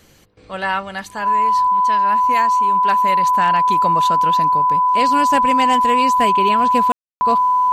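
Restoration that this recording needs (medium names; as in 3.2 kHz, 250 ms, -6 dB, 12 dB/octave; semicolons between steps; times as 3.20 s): clip repair -6.5 dBFS; band-stop 1 kHz, Q 30; room tone fill 6.92–7.21 s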